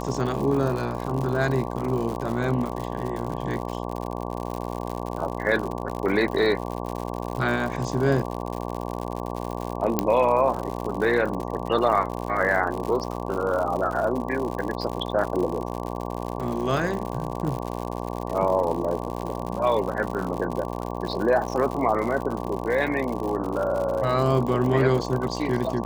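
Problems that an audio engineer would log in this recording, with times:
mains buzz 60 Hz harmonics 19 −31 dBFS
surface crackle 97 per second −29 dBFS
0:09.99: click −6 dBFS

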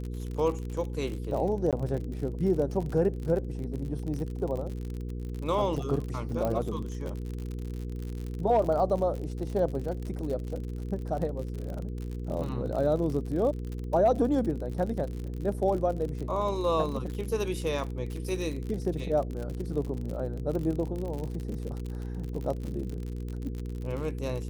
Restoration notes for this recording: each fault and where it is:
surface crackle 54 per second −34 dBFS
mains hum 60 Hz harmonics 8 −35 dBFS
0:01.71–0:01.73: drop-out 17 ms
0:06.45: click −18 dBFS

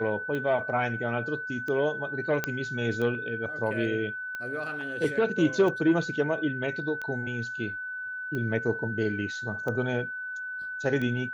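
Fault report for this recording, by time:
scratch tick 45 rpm −22 dBFS
whistle 1,500 Hz −33 dBFS
0:02.44: click −12 dBFS

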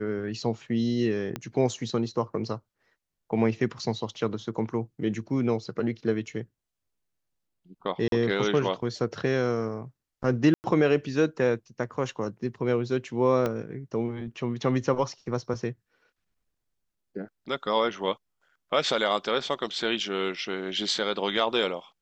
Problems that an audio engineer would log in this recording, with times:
0:01.36: click −17 dBFS
0:08.08–0:08.12: drop-out 42 ms
0:10.54–0:10.64: drop-out 99 ms
0:13.46: click −15 dBFS

